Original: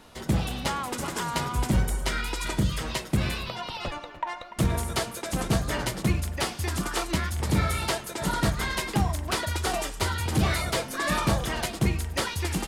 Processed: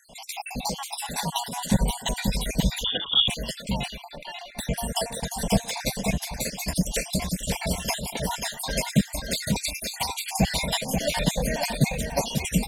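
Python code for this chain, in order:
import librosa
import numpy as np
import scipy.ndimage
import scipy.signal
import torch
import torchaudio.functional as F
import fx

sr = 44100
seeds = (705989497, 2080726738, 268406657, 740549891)

y = fx.spec_dropout(x, sr, seeds[0], share_pct=66)
y = fx.fixed_phaser(y, sr, hz=340.0, stages=6)
y = y + 10.0 ** (-5.5 / 20.0) * np.pad(y, (int(537 * sr / 1000.0), 0))[:len(y)]
y = fx.freq_invert(y, sr, carrier_hz=3500, at=(2.84, 3.28))
y = F.gain(torch.from_numpy(y), 8.5).numpy()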